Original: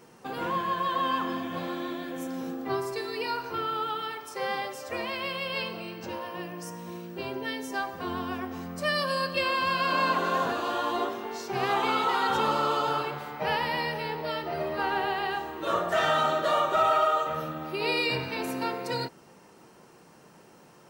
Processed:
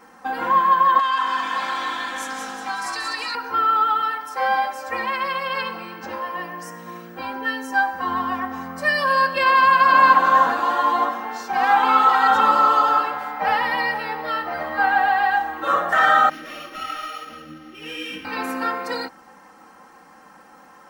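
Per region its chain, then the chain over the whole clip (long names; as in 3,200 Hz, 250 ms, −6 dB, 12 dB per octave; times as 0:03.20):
0:00.99–0:03.35: meter weighting curve ITU-R 468 + downward compressor 5 to 1, threshold −30 dBFS + echo with shifted repeats 183 ms, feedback 51%, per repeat −53 Hz, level −5.5 dB
0:16.29–0:18.25: samples sorted by size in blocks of 8 samples + drawn EQ curve 340 Hz 0 dB, 830 Hz −22 dB, 3,000 Hz +3 dB, 4,200 Hz −15 dB + micro pitch shift up and down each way 37 cents
whole clip: flat-topped bell 1,200 Hz +9.5 dB; comb filter 3.8 ms, depth 92%; level −1 dB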